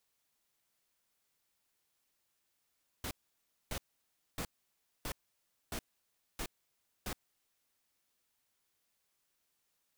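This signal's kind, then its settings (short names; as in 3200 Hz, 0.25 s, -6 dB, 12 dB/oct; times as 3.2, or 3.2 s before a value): noise bursts pink, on 0.07 s, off 0.60 s, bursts 7, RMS -39 dBFS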